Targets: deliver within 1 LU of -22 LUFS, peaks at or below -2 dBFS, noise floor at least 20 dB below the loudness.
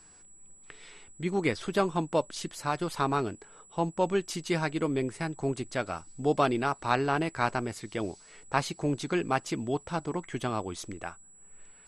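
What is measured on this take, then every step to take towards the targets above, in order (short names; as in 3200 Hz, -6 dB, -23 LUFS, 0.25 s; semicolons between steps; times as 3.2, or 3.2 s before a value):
steady tone 7800 Hz; tone level -54 dBFS; loudness -31.0 LUFS; peak -10.0 dBFS; loudness target -22.0 LUFS
-> notch 7800 Hz, Q 30; gain +9 dB; limiter -2 dBFS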